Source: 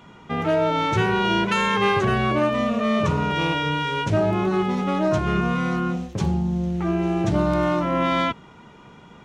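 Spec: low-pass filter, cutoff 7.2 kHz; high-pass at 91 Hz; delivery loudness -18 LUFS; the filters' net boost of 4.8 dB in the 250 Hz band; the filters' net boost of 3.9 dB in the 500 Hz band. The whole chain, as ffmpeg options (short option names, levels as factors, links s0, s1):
-af "highpass=91,lowpass=7200,equalizer=f=250:t=o:g=6,equalizer=f=500:t=o:g=3.5,volume=1.12"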